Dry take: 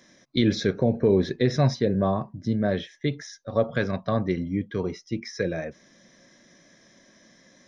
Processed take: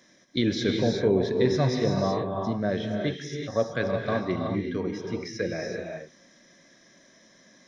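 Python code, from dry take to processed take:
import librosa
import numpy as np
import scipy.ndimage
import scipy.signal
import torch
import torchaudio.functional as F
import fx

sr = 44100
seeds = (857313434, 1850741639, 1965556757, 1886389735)

y = fx.low_shelf(x, sr, hz=130.0, db=-6.0)
y = fx.rev_gated(y, sr, seeds[0], gate_ms=400, shape='rising', drr_db=2.0)
y = y * librosa.db_to_amplitude(-2.0)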